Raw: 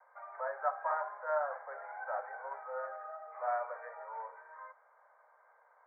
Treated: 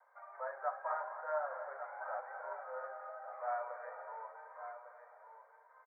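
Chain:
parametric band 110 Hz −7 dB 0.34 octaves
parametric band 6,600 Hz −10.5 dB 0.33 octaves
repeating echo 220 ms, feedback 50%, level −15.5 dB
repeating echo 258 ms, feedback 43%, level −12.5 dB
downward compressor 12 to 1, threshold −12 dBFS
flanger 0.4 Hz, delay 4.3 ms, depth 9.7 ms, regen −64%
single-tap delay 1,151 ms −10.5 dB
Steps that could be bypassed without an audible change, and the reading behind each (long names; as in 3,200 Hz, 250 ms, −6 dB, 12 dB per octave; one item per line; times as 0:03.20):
parametric band 110 Hz: nothing at its input below 400 Hz
parametric band 6,600 Hz: nothing at its input above 1,900 Hz
downward compressor, threshold −12 dBFS: peak of its input −20.0 dBFS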